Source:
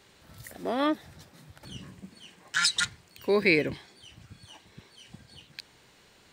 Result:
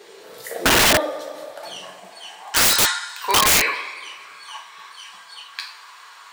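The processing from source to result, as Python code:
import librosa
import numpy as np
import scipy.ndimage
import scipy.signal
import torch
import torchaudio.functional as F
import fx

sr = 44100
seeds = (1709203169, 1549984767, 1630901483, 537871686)

y = fx.filter_sweep_highpass(x, sr, from_hz=420.0, to_hz=1100.0, start_s=0.13, end_s=3.57, q=5.2)
y = fx.rev_double_slope(y, sr, seeds[0], early_s=0.48, late_s=2.1, knee_db=-18, drr_db=-0.5)
y = (np.mod(10.0 ** (18.5 / 20.0) * y + 1.0, 2.0) - 1.0) / 10.0 ** (18.5 / 20.0)
y = y * 10.0 ** (8.5 / 20.0)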